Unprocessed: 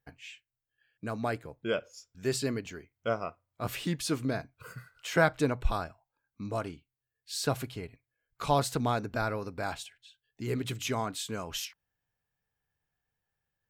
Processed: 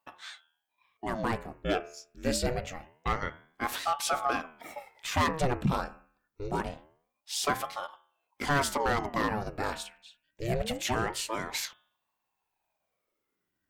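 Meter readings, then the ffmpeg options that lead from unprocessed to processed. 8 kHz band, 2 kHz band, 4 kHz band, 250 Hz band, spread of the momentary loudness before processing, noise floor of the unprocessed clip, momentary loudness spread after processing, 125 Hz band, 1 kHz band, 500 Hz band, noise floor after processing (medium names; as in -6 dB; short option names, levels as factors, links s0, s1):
+2.5 dB, +2.0 dB, +2.0 dB, -0.5 dB, 16 LU, under -85 dBFS, 15 LU, -1.0 dB, +3.5 dB, -1.0 dB, -83 dBFS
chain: -af "bandreject=f=79.44:t=h:w=4,bandreject=f=158.88:t=h:w=4,bandreject=f=238.32:t=h:w=4,bandreject=f=317.76:t=h:w=4,bandreject=f=397.2:t=h:w=4,bandreject=f=476.64:t=h:w=4,bandreject=f=556.08:t=h:w=4,bandreject=f=635.52:t=h:w=4,bandreject=f=714.96:t=h:w=4,bandreject=f=794.4:t=h:w=4,bandreject=f=873.84:t=h:w=4,bandreject=f=953.28:t=h:w=4,bandreject=f=1032.72:t=h:w=4,bandreject=f=1112.16:t=h:w=4,bandreject=f=1191.6:t=h:w=4,bandreject=f=1271.04:t=h:w=4,bandreject=f=1350.48:t=h:w=4,bandreject=f=1429.92:t=h:w=4,bandreject=f=1509.36:t=h:w=4,bandreject=f=1588.8:t=h:w=4,bandreject=f=1668.24:t=h:w=4,bandreject=f=1747.68:t=h:w=4,bandreject=f=1827.12:t=h:w=4,bandreject=f=1906.56:t=h:w=4,bandreject=f=1986:t=h:w=4,bandreject=f=2065.44:t=h:w=4,bandreject=f=2144.88:t=h:w=4,bandreject=f=2224.32:t=h:w=4,bandreject=f=2303.76:t=h:w=4,bandreject=f=2383.2:t=h:w=4,bandreject=f=2462.64:t=h:w=4,bandreject=f=2542.08:t=h:w=4,bandreject=f=2621.52:t=h:w=4,bandreject=f=2700.96:t=h:w=4,asoftclip=type=hard:threshold=0.0596,aeval=exprs='val(0)*sin(2*PI*560*n/s+560*0.8/0.25*sin(2*PI*0.25*n/s))':c=same,volume=1.88"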